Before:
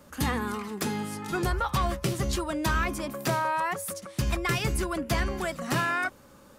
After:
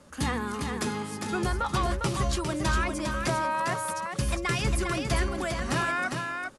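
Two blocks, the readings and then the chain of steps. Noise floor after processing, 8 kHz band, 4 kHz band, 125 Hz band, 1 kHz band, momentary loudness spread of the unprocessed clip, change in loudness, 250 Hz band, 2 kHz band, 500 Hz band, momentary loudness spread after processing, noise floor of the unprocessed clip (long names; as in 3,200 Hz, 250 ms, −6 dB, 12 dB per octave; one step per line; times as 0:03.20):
−39 dBFS, +0.5 dB, +1.0 dB, +0.5 dB, 0.0 dB, 6 LU, +0.5 dB, 0.0 dB, +0.5 dB, 0.0 dB, 4 LU, −53 dBFS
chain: elliptic low-pass filter 11,000 Hz, stop band 40 dB
on a send: single-tap delay 403 ms −5 dB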